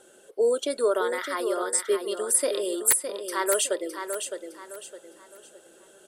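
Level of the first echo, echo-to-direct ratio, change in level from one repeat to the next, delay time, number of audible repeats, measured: -7.5 dB, -7.0 dB, -9.5 dB, 0.611 s, 3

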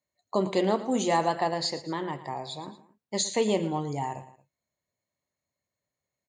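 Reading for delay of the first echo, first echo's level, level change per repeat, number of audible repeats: 0.113 s, -15.0 dB, -7.0 dB, 2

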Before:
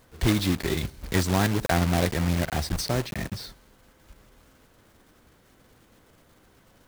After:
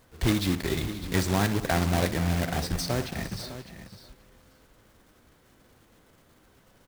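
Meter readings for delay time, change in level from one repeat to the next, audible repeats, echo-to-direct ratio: 60 ms, no steady repeat, 6, -9.0 dB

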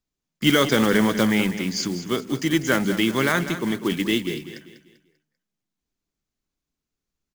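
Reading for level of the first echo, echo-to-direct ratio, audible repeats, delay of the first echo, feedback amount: -12.0 dB, -11.5 dB, 3, 0.196 s, 38%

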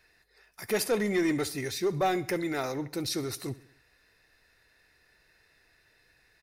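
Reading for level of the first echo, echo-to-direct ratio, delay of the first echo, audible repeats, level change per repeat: -19.0 dB, -17.5 dB, 68 ms, 3, -5.5 dB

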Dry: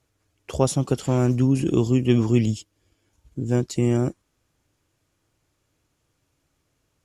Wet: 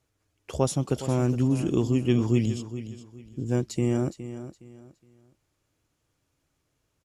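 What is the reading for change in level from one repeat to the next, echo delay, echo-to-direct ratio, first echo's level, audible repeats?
-11.0 dB, 0.415 s, -12.0 dB, -12.5 dB, 3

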